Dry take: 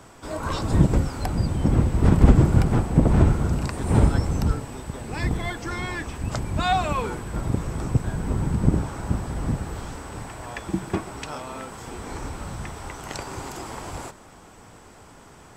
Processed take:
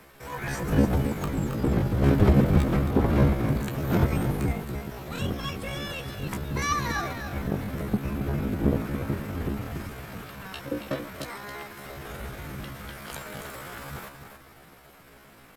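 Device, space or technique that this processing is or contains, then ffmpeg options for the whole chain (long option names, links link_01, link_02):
chipmunk voice: -filter_complex "[0:a]asplit=2[link_01][link_02];[link_02]adelay=23,volume=-9.5dB[link_03];[link_01][link_03]amix=inputs=2:normalize=0,aecho=1:1:276|552|828:0.398|0.0876|0.0193,asetrate=70004,aresample=44100,atempo=0.629961,volume=-5dB"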